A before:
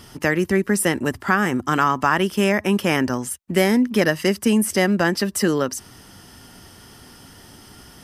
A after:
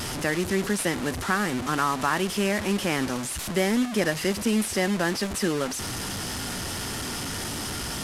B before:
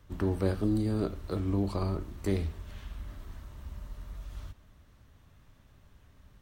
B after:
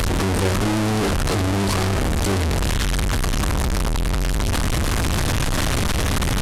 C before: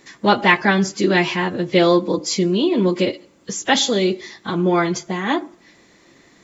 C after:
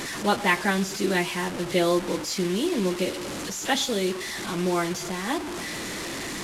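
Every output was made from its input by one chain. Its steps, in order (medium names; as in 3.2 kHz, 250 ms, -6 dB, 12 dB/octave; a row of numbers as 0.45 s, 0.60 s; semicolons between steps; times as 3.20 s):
one-bit delta coder 64 kbps, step -19 dBFS; peak normalisation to -9 dBFS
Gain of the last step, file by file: -6.5 dB, +5.5 dB, -8.0 dB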